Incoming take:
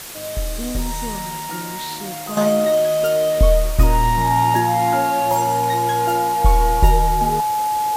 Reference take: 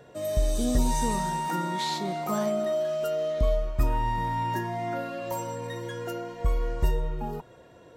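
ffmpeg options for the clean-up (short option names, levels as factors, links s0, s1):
-af "adeclick=t=4,bandreject=f=850:w=30,afwtdn=0.022,asetnsamples=n=441:p=0,asendcmd='2.37 volume volume -10.5dB',volume=1"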